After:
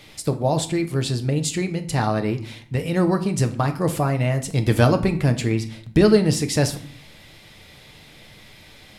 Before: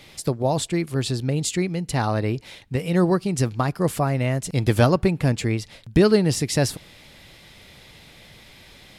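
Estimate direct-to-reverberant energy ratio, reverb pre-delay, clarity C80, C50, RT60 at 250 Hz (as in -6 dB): 6.5 dB, 7 ms, 17.0 dB, 14.0 dB, 0.90 s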